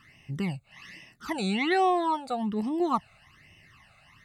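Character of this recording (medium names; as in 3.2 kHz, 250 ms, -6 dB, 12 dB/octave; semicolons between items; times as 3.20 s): phasing stages 12, 1.2 Hz, lowest notch 310–1400 Hz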